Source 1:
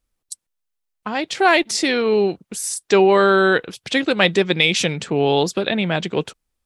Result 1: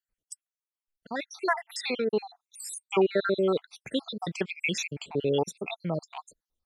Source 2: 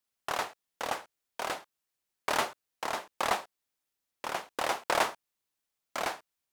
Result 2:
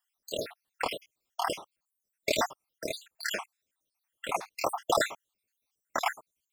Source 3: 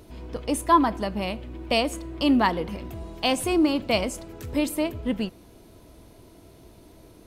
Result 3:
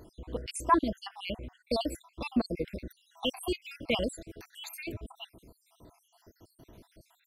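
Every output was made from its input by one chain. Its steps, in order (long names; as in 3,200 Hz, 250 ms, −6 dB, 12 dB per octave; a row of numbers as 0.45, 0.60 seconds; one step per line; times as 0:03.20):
time-frequency cells dropped at random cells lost 70%
normalise the peak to −12 dBFS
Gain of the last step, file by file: −7.0, +7.0, −2.5 decibels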